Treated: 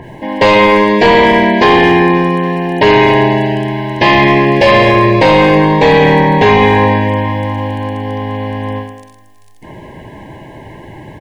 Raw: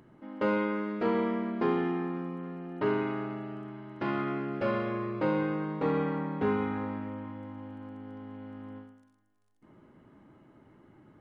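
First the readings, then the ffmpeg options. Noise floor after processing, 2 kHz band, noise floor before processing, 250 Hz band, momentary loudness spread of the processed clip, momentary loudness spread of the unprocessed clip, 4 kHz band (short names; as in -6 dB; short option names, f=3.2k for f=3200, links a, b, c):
-39 dBFS, +27.5 dB, -64 dBFS, +19.5 dB, 12 LU, 15 LU, +33.5 dB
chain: -filter_complex "[0:a]asuperstop=centerf=1300:order=20:qfactor=2.5,equalizer=f=250:w=0.95:g=-11.5,asplit=2[a][b];[b]adelay=210,highpass=300,lowpass=3.4k,asoftclip=type=hard:threshold=-29.5dB,volume=-15dB[c];[a][c]amix=inputs=2:normalize=0,apsyclip=35dB,adynamicequalizer=threshold=0.0562:dfrequency=2900:dqfactor=0.7:tfrequency=2900:tqfactor=0.7:attack=5:release=100:ratio=0.375:range=2.5:mode=boostabove:tftype=highshelf,volume=-3dB"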